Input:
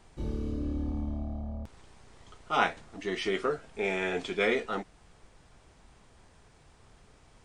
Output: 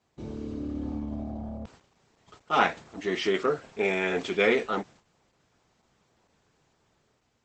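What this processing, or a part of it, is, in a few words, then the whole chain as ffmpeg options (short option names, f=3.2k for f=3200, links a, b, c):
video call: -af "highpass=110,dynaudnorm=f=350:g=5:m=5dB,agate=range=-11dB:threshold=-50dB:ratio=16:detection=peak" -ar 48000 -c:a libopus -b:a 12k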